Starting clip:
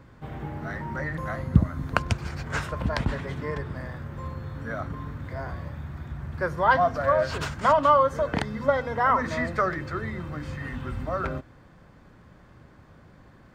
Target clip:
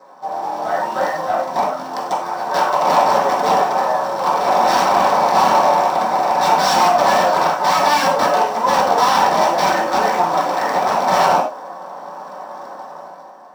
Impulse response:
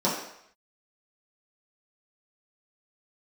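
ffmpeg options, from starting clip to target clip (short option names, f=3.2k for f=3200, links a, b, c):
-filter_complex "[0:a]lowpass=f=1.2k:p=1,dynaudnorm=f=110:g=13:m=11dB,alimiter=limit=-12.5dB:level=0:latency=1:release=42,asplit=3[a][b][c];[a]afade=t=out:st=4.39:d=0.02[d];[b]acontrast=22,afade=t=in:st=4.39:d=0.02,afade=t=out:st=6.72:d=0.02[e];[c]afade=t=in:st=6.72:d=0.02[f];[d][e][f]amix=inputs=3:normalize=0,aeval=exprs='(mod(6.68*val(0)+1,2)-1)/6.68':c=same,acrusher=bits=4:mode=log:mix=0:aa=0.000001,highpass=f=760:t=q:w=3.6,asoftclip=type=tanh:threshold=-23.5dB[g];[1:a]atrim=start_sample=2205,afade=t=out:st=0.16:d=0.01,atrim=end_sample=7497[h];[g][h]afir=irnorm=-1:irlink=0,volume=-2.5dB"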